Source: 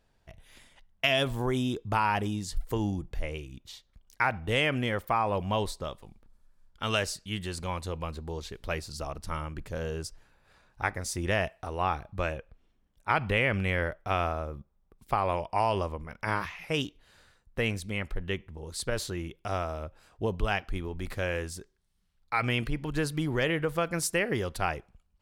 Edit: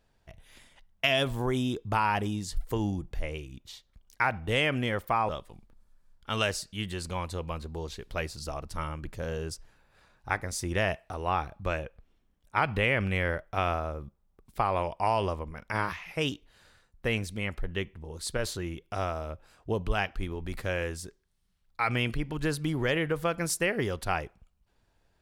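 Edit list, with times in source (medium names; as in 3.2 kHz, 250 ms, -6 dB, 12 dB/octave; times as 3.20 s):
5.29–5.82 s: delete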